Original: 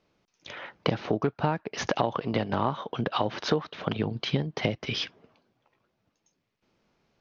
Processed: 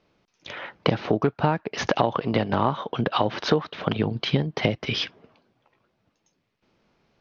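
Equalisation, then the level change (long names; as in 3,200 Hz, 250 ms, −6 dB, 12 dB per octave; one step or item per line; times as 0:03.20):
low-pass filter 5,800 Hz 12 dB per octave
+4.5 dB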